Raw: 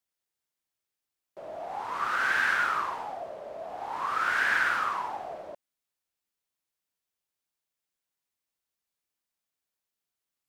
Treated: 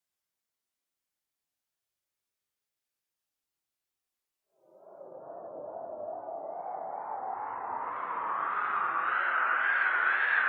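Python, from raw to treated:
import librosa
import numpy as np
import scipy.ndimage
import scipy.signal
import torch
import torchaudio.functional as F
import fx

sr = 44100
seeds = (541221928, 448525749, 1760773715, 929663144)

y = fx.spec_gate(x, sr, threshold_db=-25, keep='strong')
y = fx.paulstretch(y, sr, seeds[0], factor=5.3, window_s=0.25, from_s=0.41)
y = fx.wow_flutter(y, sr, seeds[1], rate_hz=2.1, depth_cents=93.0)
y = F.gain(torch.from_numpy(y), -1.0).numpy()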